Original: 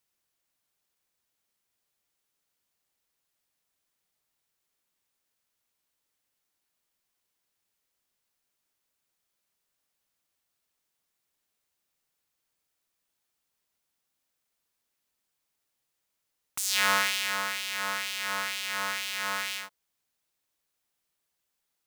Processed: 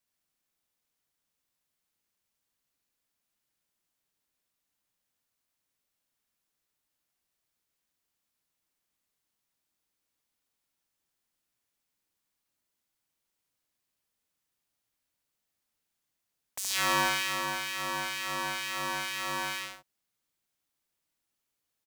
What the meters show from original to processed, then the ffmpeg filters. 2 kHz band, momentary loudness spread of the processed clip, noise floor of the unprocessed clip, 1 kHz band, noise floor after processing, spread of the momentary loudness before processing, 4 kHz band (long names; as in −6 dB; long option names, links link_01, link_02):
−2.5 dB, 9 LU, −81 dBFS, +0.5 dB, −84 dBFS, 10 LU, −3.0 dB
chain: -af "aecho=1:1:72.89|134.1:0.631|0.447,afreqshift=-340,volume=-4.5dB"